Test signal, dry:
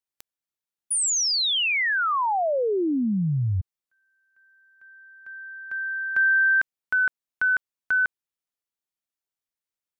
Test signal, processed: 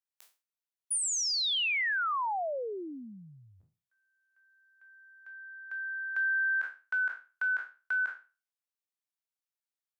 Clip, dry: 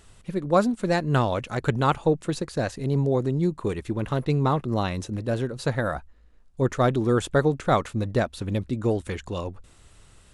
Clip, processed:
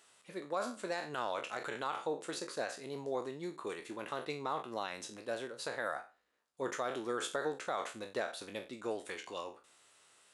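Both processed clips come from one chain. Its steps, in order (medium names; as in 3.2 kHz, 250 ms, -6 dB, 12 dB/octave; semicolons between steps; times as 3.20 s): spectral sustain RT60 0.32 s; Bessel high-pass 630 Hz, order 2; peak limiter -18.5 dBFS; trim -7 dB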